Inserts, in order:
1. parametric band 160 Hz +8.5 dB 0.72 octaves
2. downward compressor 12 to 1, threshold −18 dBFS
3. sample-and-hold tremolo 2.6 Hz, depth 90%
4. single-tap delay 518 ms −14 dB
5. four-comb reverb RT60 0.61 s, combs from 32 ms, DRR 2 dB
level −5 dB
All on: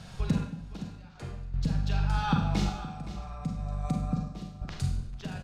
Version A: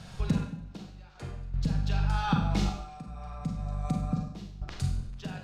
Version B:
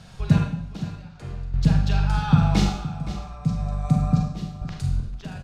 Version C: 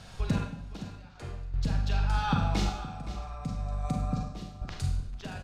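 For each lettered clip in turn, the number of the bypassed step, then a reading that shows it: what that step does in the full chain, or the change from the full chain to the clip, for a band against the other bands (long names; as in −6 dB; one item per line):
4, change in momentary loudness spread +1 LU
2, average gain reduction 5.5 dB
1, 250 Hz band −3.5 dB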